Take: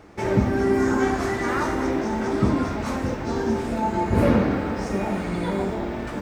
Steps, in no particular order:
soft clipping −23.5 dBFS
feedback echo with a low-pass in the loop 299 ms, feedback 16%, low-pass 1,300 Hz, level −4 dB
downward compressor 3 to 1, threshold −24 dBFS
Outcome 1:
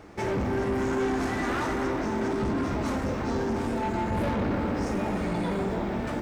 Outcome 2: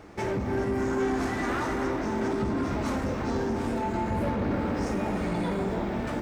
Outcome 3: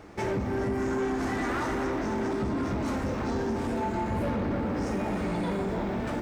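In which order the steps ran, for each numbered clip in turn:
soft clipping, then feedback echo with a low-pass in the loop, then downward compressor
downward compressor, then soft clipping, then feedback echo with a low-pass in the loop
feedback echo with a low-pass in the loop, then downward compressor, then soft clipping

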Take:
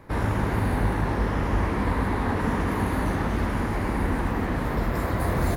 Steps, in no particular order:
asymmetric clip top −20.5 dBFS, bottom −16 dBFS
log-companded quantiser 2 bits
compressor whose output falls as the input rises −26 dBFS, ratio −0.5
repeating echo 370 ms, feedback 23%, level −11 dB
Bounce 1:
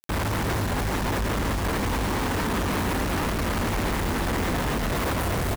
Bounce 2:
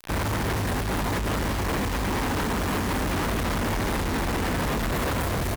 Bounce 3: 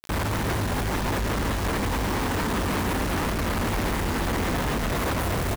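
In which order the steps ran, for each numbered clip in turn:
asymmetric clip, then compressor whose output falls as the input rises, then log-companded quantiser, then repeating echo
repeating echo, then compressor whose output falls as the input rises, then log-companded quantiser, then asymmetric clip
compressor whose output falls as the input rises, then asymmetric clip, then log-companded quantiser, then repeating echo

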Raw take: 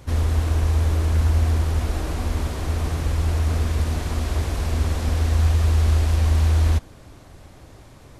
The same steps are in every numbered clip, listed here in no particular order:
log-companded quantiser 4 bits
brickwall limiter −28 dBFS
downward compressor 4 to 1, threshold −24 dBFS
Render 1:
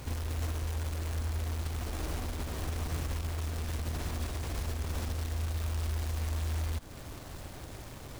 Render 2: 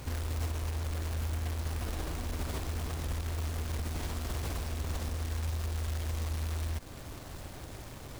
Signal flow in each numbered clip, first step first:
log-companded quantiser, then downward compressor, then brickwall limiter
downward compressor, then log-companded quantiser, then brickwall limiter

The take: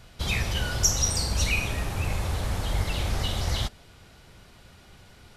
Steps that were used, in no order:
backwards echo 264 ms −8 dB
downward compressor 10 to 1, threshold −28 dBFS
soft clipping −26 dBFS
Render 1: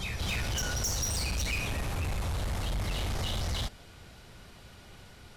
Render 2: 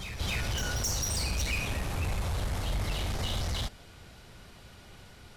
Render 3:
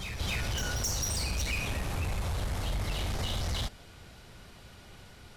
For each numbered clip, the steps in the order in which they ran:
backwards echo, then soft clipping, then downward compressor
soft clipping, then downward compressor, then backwards echo
soft clipping, then backwards echo, then downward compressor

